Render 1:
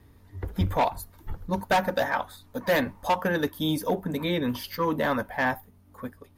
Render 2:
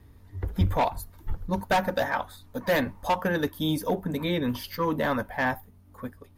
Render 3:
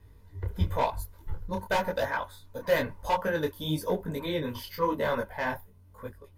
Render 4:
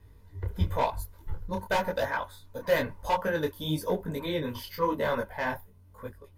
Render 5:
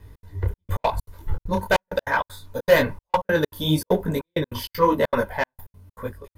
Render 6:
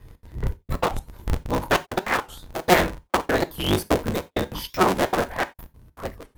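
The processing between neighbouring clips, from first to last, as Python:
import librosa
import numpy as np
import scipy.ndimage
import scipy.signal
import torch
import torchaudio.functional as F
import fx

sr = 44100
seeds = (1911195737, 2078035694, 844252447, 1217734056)

y1 = fx.low_shelf(x, sr, hz=100.0, db=6.5)
y1 = y1 * librosa.db_to_amplitude(-1.0)
y2 = y1 + 0.44 * np.pad(y1, (int(2.0 * sr / 1000.0), 0))[:len(y1)]
y2 = fx.detune_double(y2, sr, cents=34)
y3 = y2
y4 = fx.step_gate(y3, sr, bpm=196, pattern='xx.xxxx..x.xx.xx', floor_db=-60.0, edge_ms=4.5)
y4 = y4 * librosa.db_to_amplitude(9.0)
y5 = fx.cycle_switch(y4, sr, every=3, mode='inverted')
y5 = fx.rev_gated(y5, sr, seeds[0], gate_ms=110, shape='falling', drr_db=11.5)
y5 = fx.record_warp(y5, sr, rpm=45.0, depth_cents=250.0)
y5 = y5 * librosa.db_to_amplitude(-1.0)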